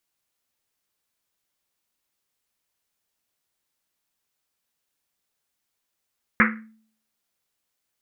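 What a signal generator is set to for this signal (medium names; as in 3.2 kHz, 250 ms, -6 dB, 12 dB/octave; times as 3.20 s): Risset drum, pitch 220 Hz, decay 0.57 s, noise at 1.7 kHz, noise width 970 Hz, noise 55%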